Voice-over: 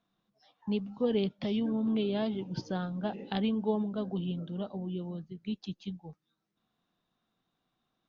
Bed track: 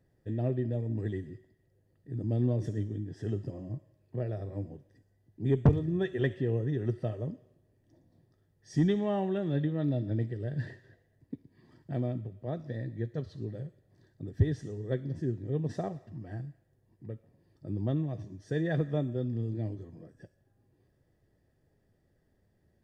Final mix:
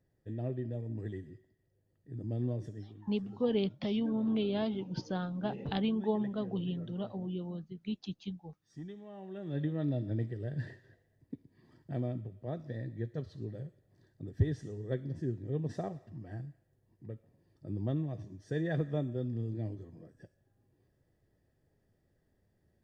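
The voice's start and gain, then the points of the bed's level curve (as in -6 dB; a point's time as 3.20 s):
2.40 s, -1.5 dB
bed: 2.54 s -6 dB
3.10 s -19 dB
9.12 s -19 dB
9.65 s -3 dB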